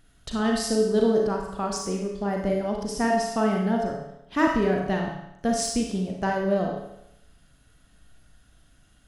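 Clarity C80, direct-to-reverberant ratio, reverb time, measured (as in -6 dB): 5.5 dB, -0.5 dB, 0.80 s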